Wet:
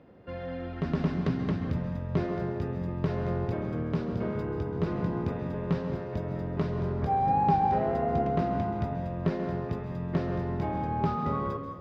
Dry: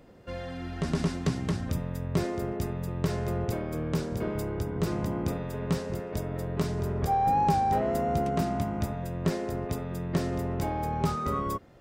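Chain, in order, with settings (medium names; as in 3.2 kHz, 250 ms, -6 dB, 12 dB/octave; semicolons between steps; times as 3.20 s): high-pass 67 Hz; distance through air 290 m; plate-style reverb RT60 1.1 s, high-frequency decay 0.85×, pre-delay 120 ms, DRR 6.5 dB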